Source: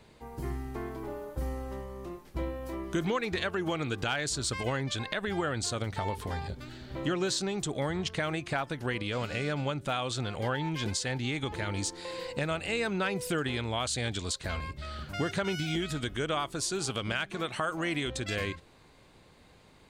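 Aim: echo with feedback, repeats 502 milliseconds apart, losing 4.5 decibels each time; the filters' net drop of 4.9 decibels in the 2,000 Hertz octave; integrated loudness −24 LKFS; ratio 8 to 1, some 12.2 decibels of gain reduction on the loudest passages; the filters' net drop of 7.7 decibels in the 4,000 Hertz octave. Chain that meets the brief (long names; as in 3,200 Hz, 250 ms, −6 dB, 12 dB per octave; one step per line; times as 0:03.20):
parametric band 2,000 Hz −4.5 dB
parametric band 4,000 Hz −8.5 dB
downward compressor 8 to 1, threshold −39 dBFS
repeating echo 502 ms, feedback 60%, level −4.5 dB
level +17.5 dB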